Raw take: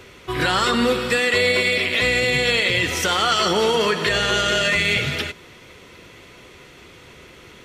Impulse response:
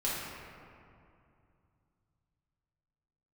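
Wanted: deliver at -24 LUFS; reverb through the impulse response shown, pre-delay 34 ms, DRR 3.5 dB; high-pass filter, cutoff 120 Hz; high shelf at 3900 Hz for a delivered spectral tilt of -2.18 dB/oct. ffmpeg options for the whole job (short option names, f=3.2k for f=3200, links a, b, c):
-filter_complex "[0:a]highpass=120,highshelf=f=3.9k:g=6,asplit=2[a][b];[1:a]atrim=start_sample=2205,adelay=34[c];[b][c]afir=irnorm=-1:irlink=0,volume=-10.5dB[d];[a][d]amix=inputs=2:normalize=0,volume=-8.5dB"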